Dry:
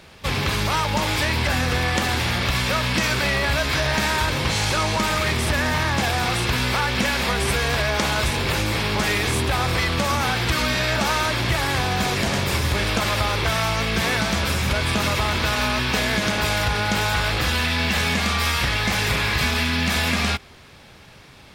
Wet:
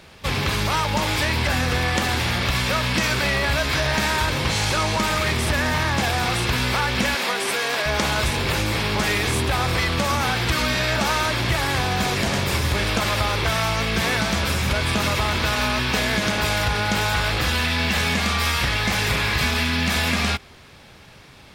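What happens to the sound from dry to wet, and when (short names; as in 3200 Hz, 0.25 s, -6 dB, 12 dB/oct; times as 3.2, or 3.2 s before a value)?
7.15–7.86 Bessel high-pass 310 Hz, order 4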